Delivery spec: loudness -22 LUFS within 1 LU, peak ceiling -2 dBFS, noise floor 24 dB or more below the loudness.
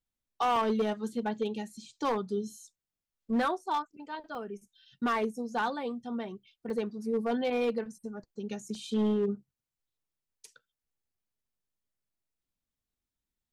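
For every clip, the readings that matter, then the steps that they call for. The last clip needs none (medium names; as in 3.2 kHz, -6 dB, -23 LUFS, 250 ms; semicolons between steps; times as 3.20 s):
clipped samples 1.2%; clipping level -23.0 dBFS; dropouts 4; longest dropout 1.2 ms; loudness -32.5 LUFS; peak level -23.0 dBFS; loudness target -22.0 LUFS
-> clip repair -23 dBFS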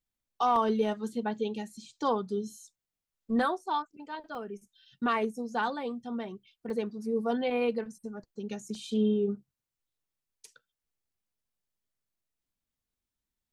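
clipped samples 0.0%; dropouts 4; longest dropout 1.2 ms
-> interpolate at 0.56/4.35/6.70/8.75 s, 1.2 ms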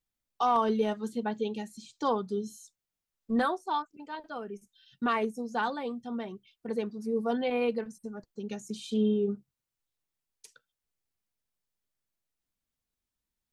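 dropouts 0; loudness -31.5 LUFS; peak level -15.5 dBFS; loudness target -22.0 LUFS
-> trim +9.5 dB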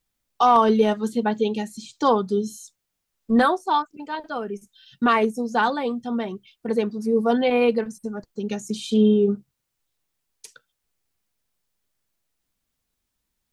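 loudness -22.0 LUFS; peak level -6.0 dBFS; noise floor -79 dBFS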